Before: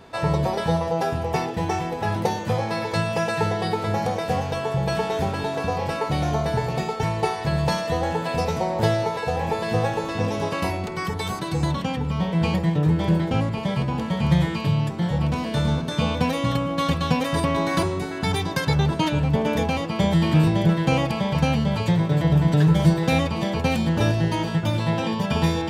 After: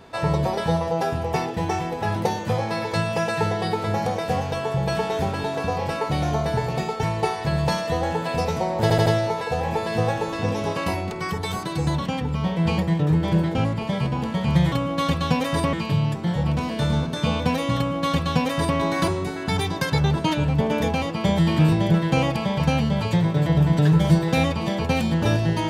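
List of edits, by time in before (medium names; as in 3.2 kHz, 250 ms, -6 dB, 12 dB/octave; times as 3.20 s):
8.82 s: stutter 0.08 s, 4 plays
16.52–17.53 s: copy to 14.48 s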